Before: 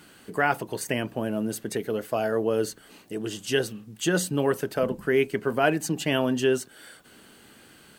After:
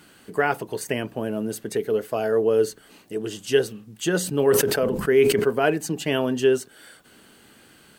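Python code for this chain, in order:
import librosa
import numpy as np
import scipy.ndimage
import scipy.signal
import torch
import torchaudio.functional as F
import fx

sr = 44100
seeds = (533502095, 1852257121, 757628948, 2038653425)

y = fx.dynamic_eq(x, sr, hz=430.0, q=5.4, threshold_db=-40.0, ratio=4.0, max_db=8)
y = fx.sustainer(y, sr, db_per_s=45.0, at=(4.18, 5.5))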